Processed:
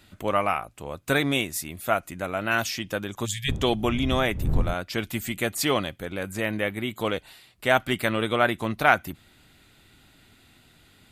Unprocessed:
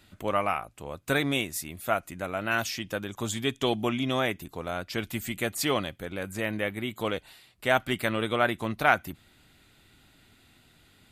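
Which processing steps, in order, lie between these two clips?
3.45–4.73 wind noise 100 Hz -29 dBFS; 3.26–3.49 spectral delete 210–1600 Hz; gain +3 dB

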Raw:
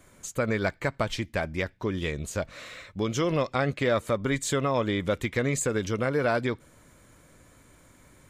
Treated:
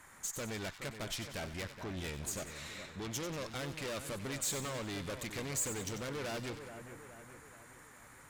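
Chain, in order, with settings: band noise 760–2000 Hz -54 dBFS; tube stage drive 33 dB, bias 0.55; high shelf 3500 Hz +10 dB; split-band echo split 2400 Hz, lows 0.423 s, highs 94 ms, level -9.5 dB; gain -5.5 dB

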